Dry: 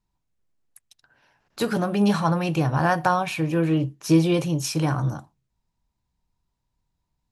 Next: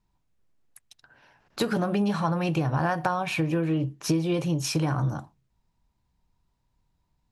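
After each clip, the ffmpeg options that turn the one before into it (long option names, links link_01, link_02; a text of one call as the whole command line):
ffmpeg -i in.wav -af "highshelf=frequency=5400:gain=-6.5,acompressor=threshold=-27dB:ratio=6,volume=4.5dB" out.wav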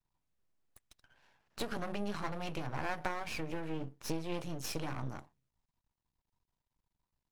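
ffmpeg -i in.wav -af "lowshelf=frequency=340:gain=-4.5,aeval=exprs='max(val(0),0)':channel_layout=same,volume=-6dB" out.wav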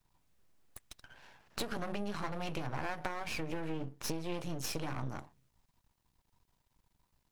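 ffmpeg -i in.wav -af "acompressor=threshold=-47dB:ratio=3,volume=10.5dB" out.wav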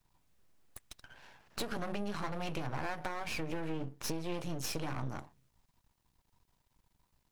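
ffmpeg -i in.wav -af "asoftclip=type=tanh:threshold=-22.5dB,volume=1dB" out.wav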